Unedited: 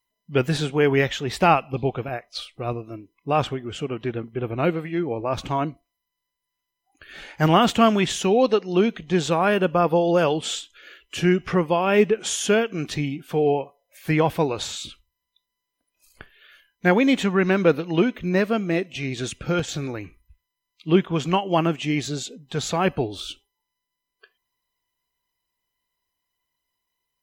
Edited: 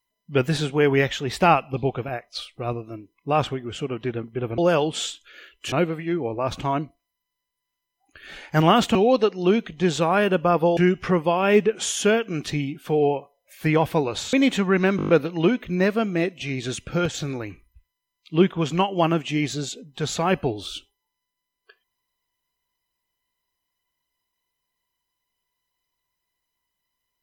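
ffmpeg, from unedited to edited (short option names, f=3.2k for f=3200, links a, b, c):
-filter_complex "[0:a]asplit=12[a][b][c][d][e][f][g][h][i][j][k][l];[a]atrim=end=4.582[m];[b]atrim=start=10.068:end=11.212[n];[c]atrim=start=4.578:end=7.812[o];[d]atrim=start=8.248:end=10.072[p];[e]atrim=start=11.208:end=14.772[q];[f]atrim=start=16.988:end=17.652[r];[g]atrim=start=17.628:end=17.652[s];[h]atrim=start=17.628:end=17.652[t];[i]atrim=start=17.628:end=17.652[u];[j]atrim=start=17.628:end=17.652[v];[k]atrim=start=17.628:end=17.652[w];[l]atrim=start=17.628[x];[m][n]acrossfade=d=0.004:c1=hsin:c2=hsin[y];[y][o]acrossfade=d=0.004:c1=hsin:c2=hsin[z];[z][p]acrossfade=d=0.004:c1=hsin:c2=hsin[aa];[aa][q]acrossfade=d=0.004:c1=hsin:c2=hsin[ab];[ab][r]acrossfade=d=0.004:c1=hsin:c2=hsin[ac];[ac][s]acrossfade=d=0.004:c1=hsin:c2=hsin[ad];[ad][t]acrossfade=d=0.004:c1=hsin:c2=hsin[ae];[ae][u]acrossfade=d=0.004:c1=hsin:c2=hsin[af];[af][v]acrossfade=d=0.004:c1=hsin:c2=hsin[ag];[ag][w]acrossfade=d=0.004:c1=hsin:c2=hsin[ah];[ah][x]acrossfade=d=0.004:c1=hsin:c2=hsin"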